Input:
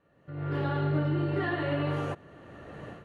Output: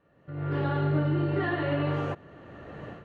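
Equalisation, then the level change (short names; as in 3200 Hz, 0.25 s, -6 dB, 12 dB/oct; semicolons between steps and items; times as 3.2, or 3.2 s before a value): air absorption 91 m; +2.0 dB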